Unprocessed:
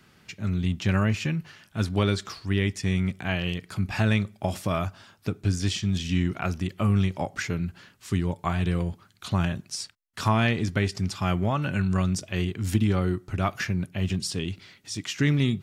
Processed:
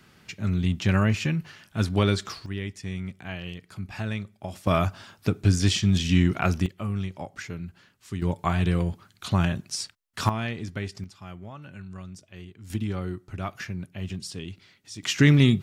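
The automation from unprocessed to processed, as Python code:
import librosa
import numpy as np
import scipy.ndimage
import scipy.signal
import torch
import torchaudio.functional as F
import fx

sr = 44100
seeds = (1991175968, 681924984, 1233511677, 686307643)

y = fx.gain(x, sr, db=fx.steps((0.0, 1.5), (2.46, -8.0), (4.67, 4.5), (6.66, -7.0), (8.22, 2.0), (10.29, -7.5), (11.04, -16.0), (12.7, -6.5), (15.03, 5.5)))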